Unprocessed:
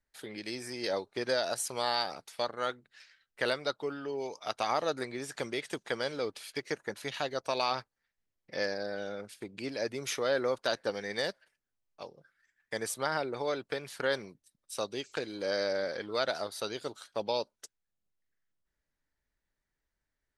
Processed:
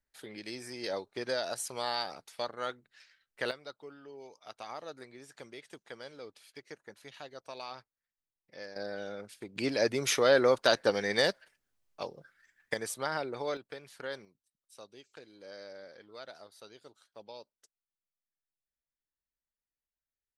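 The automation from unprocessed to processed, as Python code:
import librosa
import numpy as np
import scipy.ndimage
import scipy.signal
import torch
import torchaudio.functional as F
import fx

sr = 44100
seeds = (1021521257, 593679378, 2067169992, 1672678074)

y = fx.gain(x, sr, db=fx.steps((0.0, -3.0), (3.51, -12.5), (8.76, -2.0), (9.56, 6.0), (12.74, -2.0), (13.57, -9.0), (14.25, -16.0)))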